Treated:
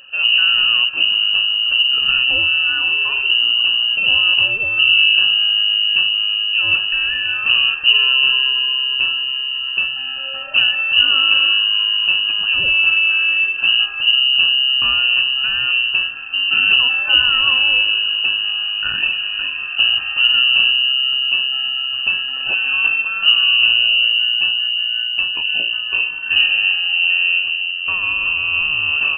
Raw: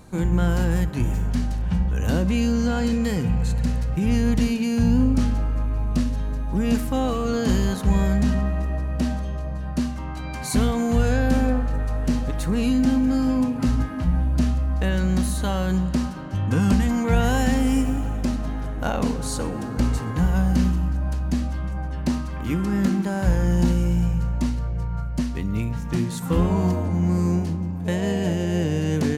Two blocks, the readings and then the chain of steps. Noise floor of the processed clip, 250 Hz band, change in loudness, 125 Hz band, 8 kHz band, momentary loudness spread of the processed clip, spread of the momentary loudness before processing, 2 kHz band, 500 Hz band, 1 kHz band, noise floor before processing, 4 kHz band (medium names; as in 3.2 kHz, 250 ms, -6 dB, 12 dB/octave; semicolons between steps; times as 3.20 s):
-25 dBFS, under -25 dB, +10.0 dB, under -20 dB, under -40 dB, 7 LU, 7 LU, +21.5 dB, under -10 dB, -1.0 dB, -29 dBFS, +29.0 dB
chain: Chebyshev band-stop 420–1100 Hz, order 5; frequency inversion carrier 2.9 kHz; trim +5 dB